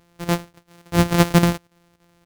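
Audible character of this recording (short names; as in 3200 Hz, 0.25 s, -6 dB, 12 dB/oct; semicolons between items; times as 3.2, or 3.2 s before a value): a buzz of ramps at a fixed pitch in blocks of 256 samples; chopped level 3.5 Hz, depth 65%, duty 85%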